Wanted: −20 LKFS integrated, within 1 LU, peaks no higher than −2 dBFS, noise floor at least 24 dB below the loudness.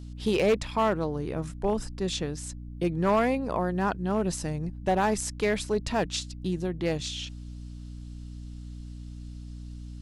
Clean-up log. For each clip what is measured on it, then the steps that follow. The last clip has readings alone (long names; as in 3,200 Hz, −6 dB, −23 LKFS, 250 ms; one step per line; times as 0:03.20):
share of clipped samples 0.6%; peaks flattened at −17.5 dBFS; mains hum 60 Hz; hum harmonics up to 300 Hz; level of the hum −38 dBFS; integrated loudness −28.5 LKFS; sample peak −17.5 dBFS; target loudness −20.0 LKFS
→ clipped peaks rebuilt −17.5 dBFS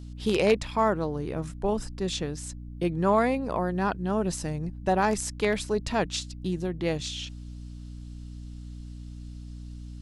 share of clipped samples 0.0%; mains hum 60 Hz; hum harmonics up to 300 Hz; level of the hum −38 dBFS
→ mains-hum notches 60/120/180/240/300 Hz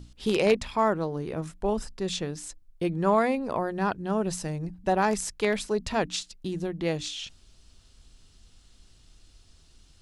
mains hum none found; integrated loudness −28.5 LKFS; sample peak −9.0 dBFS; target loudness −20.0 LKFS
→ level +8.5 dB
brickwall limiter −2 dBFS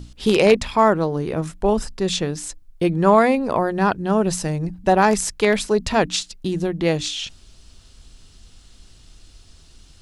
integrated loudness −20.0 LKFS; sample peak −2.0 dBFS; background noise floor −50 dBFS